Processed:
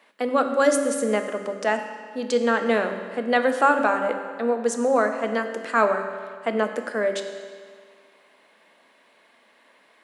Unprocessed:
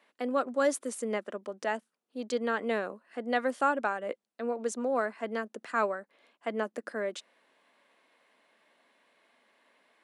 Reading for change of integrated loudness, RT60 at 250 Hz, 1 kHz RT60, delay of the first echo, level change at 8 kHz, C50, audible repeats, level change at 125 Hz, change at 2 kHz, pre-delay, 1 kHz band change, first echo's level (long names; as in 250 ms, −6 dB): +9.0 dB, 1.9 s, 1.9 s, no echo audible, +9.0 dB, 8.0 dB, no echo audible, can't be measured, +9.5 dB, 5 ms, +9.0 dB, no echo audible